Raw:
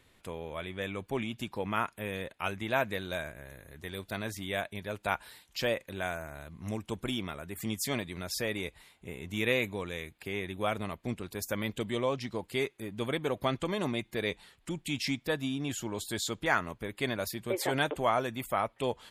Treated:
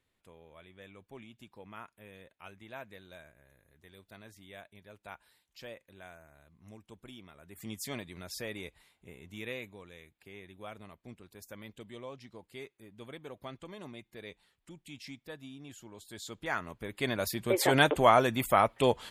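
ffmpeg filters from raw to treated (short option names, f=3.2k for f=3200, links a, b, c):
-af "volume=13.5dB,afade=t=in:st=7.33:d=0.42:silence=0.334965,afade=t=out:st=8.66:d=1.12:silence=0.421697,afade=t=in:st=16.05:d=0.71:silence=0.316228,afade=t=in:st=16.76:d=1.09:silence=0.316228"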